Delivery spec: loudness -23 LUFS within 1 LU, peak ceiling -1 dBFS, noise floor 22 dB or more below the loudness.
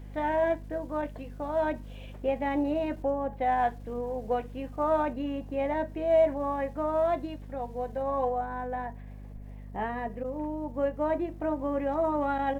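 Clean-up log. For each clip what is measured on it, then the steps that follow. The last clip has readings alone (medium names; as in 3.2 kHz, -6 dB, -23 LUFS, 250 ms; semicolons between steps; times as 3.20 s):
hum 50 Hz; highest harmonic 250 Hz; hum level -41 dBFS; loudness -30.5 LUFS; peak level -15.5 dBFS; loudness target -23.0 LUFS
-> hum notches 50/100/150/200/250 Hz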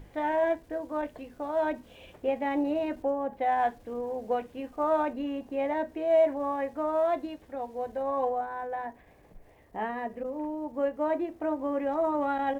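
hum not found; loudness -30.5 LUFS; peak level -15.5 dBFS; loudness target -23.0 LUFS
-> trim +7.5 dB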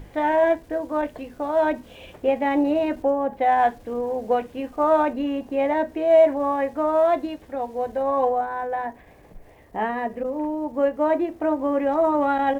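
loudness -23.0 LUFS; peak level -8.0 dBFS; noise floor -49 dBFS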